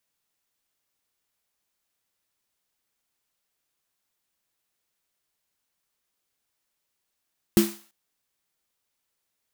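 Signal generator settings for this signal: snare drum length 0.34 s, tones 210 Hz, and 340 Hz, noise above 600 Hz, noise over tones -10 dB, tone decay 0.29 s, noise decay 0.46 s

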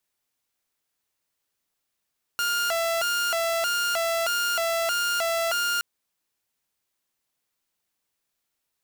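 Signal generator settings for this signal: siren hi-lo 667–1410 Hz 1.6 per s saw -20.5 dBFS 3.42 s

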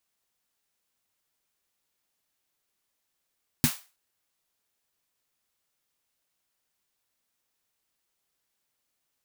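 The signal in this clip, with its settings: snare drum length 0.32 s, tones 150 Hz, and 240 Hz, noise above 750 Hz, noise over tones -6 dB, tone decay 0.09 s, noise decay 0.32 s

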